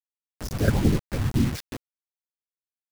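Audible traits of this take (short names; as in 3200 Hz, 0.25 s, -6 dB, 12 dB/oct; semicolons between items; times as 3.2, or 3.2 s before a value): phasing stages 8, 3.6 Hz, lowest notch 370–1300 Hz; tremolo saw down 5.9 Hz, depth 70%; a quantiser's noise floor 6-bit, dither none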